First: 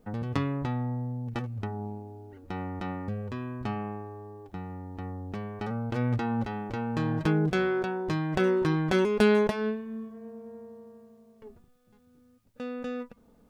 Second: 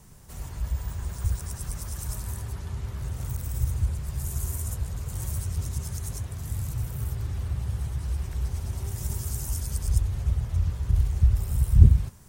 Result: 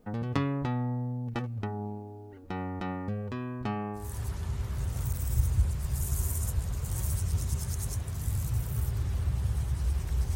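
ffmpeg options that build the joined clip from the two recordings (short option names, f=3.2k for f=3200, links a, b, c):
-filter_complex "[0:a]apad=whole_dur=10.35,atrim=end=10.35,atrim=end=4.21,asetpts=PTS-STARTPTS[a];[1:a]atrim=start=2.17:end=8.59,asetpts=PTS-STARTPTS[b];[a][b]acrossfade=d=0.28:c1=tri:c2=tri"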